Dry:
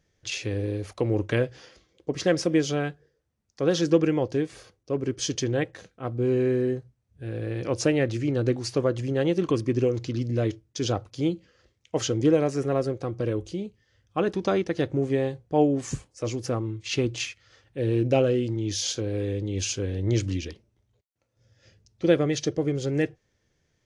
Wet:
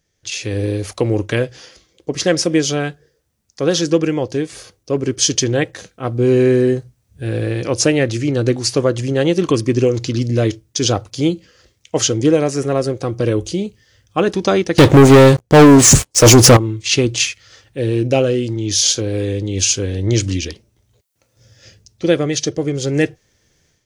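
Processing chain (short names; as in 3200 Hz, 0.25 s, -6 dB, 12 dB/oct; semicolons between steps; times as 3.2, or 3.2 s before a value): high shelf 4100 Hz +10.5 dB; AGC gain up to 14 dB; 14.78–16.57 sample leveller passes 5; gain -1 dB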